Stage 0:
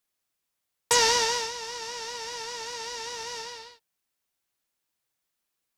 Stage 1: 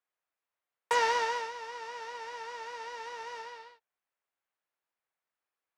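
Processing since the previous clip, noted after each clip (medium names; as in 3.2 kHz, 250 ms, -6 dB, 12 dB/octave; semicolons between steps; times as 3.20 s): three-band isolator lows -15 dB, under 420 Hz, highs -18 dB, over 2.4 kHz; trim -1 dB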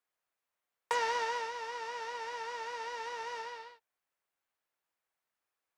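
compression 2:1, threshold -35 dBFS, peak gain reduction 7.5 dB; trim +1.5 dB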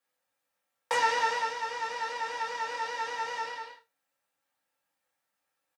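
doubling 26 ms -10.5 dB; reverberation RT60 0.20 s, pre-delay 3 ms, DRR -4.5 dB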